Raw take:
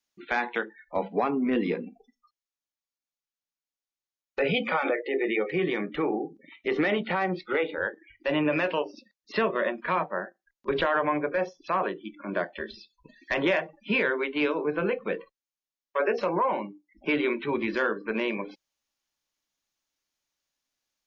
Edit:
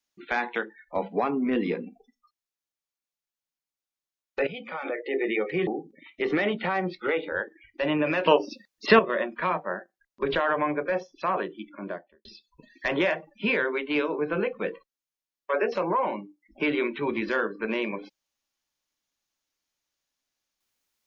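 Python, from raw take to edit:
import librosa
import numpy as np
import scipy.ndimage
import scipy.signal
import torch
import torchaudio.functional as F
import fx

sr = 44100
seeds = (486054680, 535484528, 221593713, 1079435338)

y = fx.studio_fade_out(x, sr, start_s=12.08, length_s=0.63)
y = fx.edit(y, sr, fx.fade_in_from(start_s=4.47, length_s=0.65, curve='qua', floor_db=-13.0),
    fx.cut(start_s=5.67, length_s=0.46),
    fx.clip_gain(start_s=8.72, length_s=0.73, db=9.0), tone=tone)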